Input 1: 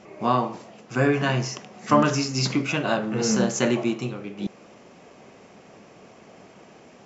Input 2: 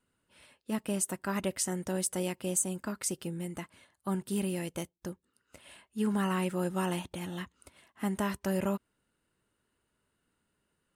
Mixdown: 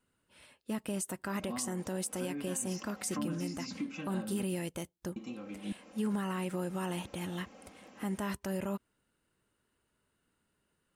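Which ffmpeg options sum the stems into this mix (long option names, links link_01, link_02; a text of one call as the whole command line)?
ffmpeg -i stem1.wav -i stem2.wav -filter_complex "[0:a]aecho=1:1:3.8:0.97,acrossover=split=210[link_01][link_02];[link_02]acompressor=threshold=-33dB:ratio=8[link_03];[link_01][link_03]amix=inputs=2:normalize=0,adelay=1250,volume=-9.5dB,asplit=3[link_04][link_05][link_06];[link_04]atrim=end=4.43,asetpts=PTS-STARTPTS,afade=type=out:start_time=4.426:duration=0.004:curve=hsin[link_07];[link_05]atrim=start=4.43:end=5.16,asetpts=PTS-STARTPTS,volume=0[link_08];[link_06]atrim=start=5.16,asetpts=PTS-STARTPTS,afade=type=in:duration=0.004:curve=hsin[link_09];[link_07][link_08][link_09]concat=n=3:v=0:a=1[link_10];[1:a]volume=0dB[link_11];[link_10][link_11]amix=inputs=2:normalize=0,alimiter=level_in=1.5dB:limit=-24dB:level=0:latency=1:release=68,volume=-1.5dB" out.wav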